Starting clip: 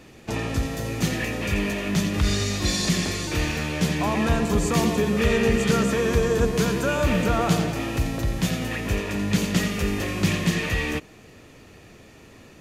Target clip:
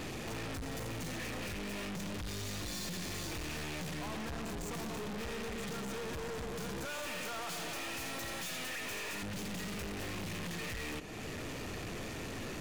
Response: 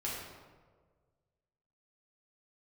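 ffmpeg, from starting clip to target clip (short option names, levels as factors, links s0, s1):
-filter_complex "[0:a]asettb=1/sr,asplit=3[s0][s1][s2];[s0]atrim=end=6.854[s3];[s1]atrim=start=6.85:end=9.23,asetpts=PTS-STARTPTS,afade=t=in:d=0.004:c=qsin,afade=t=out:st=2.376:d=0.004:c=qsin,highpass=f=1300:p=1[s4];[s2]atrim=start=9.226[s5];[s3][s4]acrossfade=d=0.004:c1=hsin:c2=qsin[s6];[s6][s5]acrossfade=d=0.004:c1=qsin:c2=hsin,acompressor=threshold=0.00891:ratio=3,aeval=exprs='(tanh(447*val(0)+0.35)-tanh(0.35))/447':c=same,volume=4.73"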